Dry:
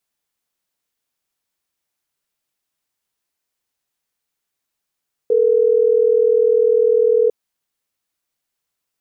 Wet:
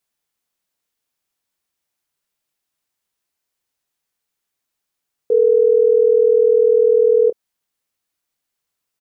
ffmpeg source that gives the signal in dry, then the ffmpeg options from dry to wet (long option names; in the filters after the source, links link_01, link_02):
-f lavfi -i "aevalsrc='0.2*(sin(2*PI*440*t)+sin(2*PI*480*t))*clip(min(mod(t,6),2-mod(t,6))/0.005,0,1)':duration=3.12:sample_rate=44100"
-filter_complex "[0:a]asplit=2[link_01][link_02];[link_02]adelay=27,volume=-14dB[link_03];[link_01][link_03]amix=inputs=2:normalize=0"